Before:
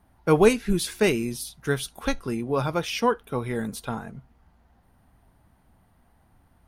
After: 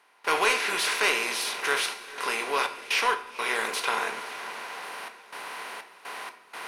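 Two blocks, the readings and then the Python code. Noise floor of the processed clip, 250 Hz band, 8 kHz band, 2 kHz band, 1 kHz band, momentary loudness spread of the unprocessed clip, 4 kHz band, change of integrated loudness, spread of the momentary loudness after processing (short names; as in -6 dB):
-55 dBFS, -17.5 dB, +3.0 dB, +7.5 dB, +3.0 dB, 13 LU, +6.0 dB, -1.5 dB, 16 LU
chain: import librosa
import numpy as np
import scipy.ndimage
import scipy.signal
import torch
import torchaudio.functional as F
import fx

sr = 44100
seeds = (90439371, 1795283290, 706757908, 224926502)

p1 = fx.bin_compress(x, sr, power=0.4)
p2 = scipy.signal.sosfilt(scipy.signal.butter(2, 1200.0, 'highpass', fs=sr, output='sos'), p1)
p3 = fx.high_shelf(p2, sr, hz=6300.0, db=-9.5)
p4 = 10.0 ** (-25.0 / 20.0) * np.tanh(p3 / 10.0 ** (-25.0 / 20.0))
p5 = p3 + F.gain(torch.from_numpy(p4), -7.5).numpy()
p6 = fx.step_gate(p5, sr, bpm=62, pattern='.xxxxxxx.xx.x', floor_db=-24.0, edge_ms=4.5)
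p7 = p6 + fx.echo_diffused(p6, sr, ms=507, feedback_pct=43, wet_db=-15.5, dry=0)
y = fx.room_shoebox(p7, sr, seeds[0], volume_m3=88.0, walls='mixed', distance_m=0.32)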